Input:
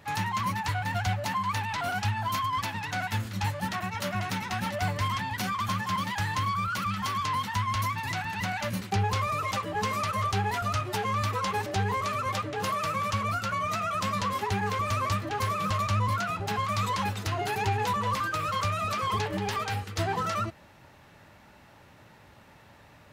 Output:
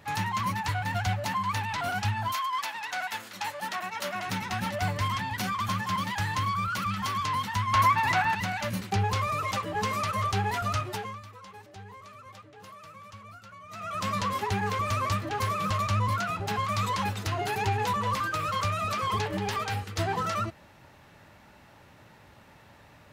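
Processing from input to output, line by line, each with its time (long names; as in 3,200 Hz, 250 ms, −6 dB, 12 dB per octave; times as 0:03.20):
0:02.31–0:04.26: high-pass filter 760 Hz → 290 Hz
0:07.73–0:08.35: parametric band 990 Hz +10 dB 2.9 octaves
0:10.78–0:14.11: duck −18 dB, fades 0.43 s linear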